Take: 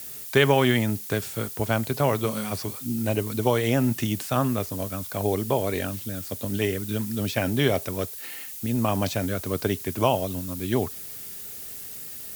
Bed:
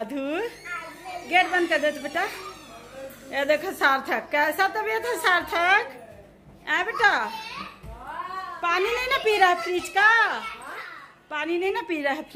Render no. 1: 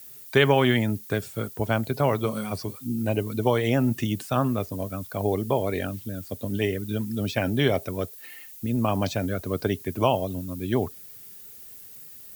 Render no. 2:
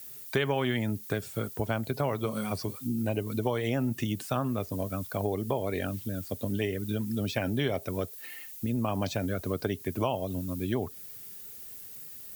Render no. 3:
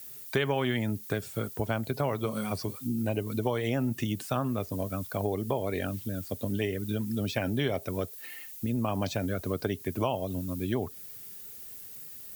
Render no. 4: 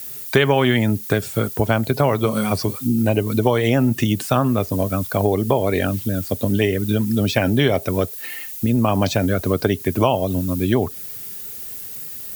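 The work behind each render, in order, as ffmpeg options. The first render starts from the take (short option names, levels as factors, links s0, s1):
-af "afftdn=nr=10:nf=-38"
-af "acompressor=threshold=0.0398:ratio=2.5"
-af anull
-af "volume=3.98"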